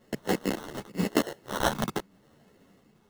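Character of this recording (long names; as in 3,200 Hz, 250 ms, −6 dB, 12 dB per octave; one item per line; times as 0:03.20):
phaser sweep stages 4, 0.91 Hz, lowest notch 750–4,700 Hz
aliases and images of a low sample rate 2,400 Hz, jitter 0%
a shimmering, thickened sound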